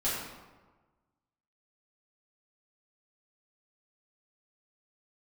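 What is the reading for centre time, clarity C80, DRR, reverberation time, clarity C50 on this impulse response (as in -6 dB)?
76 ms, 2.5 dB, -11.0 dB, 1.3 s, 0.0 dB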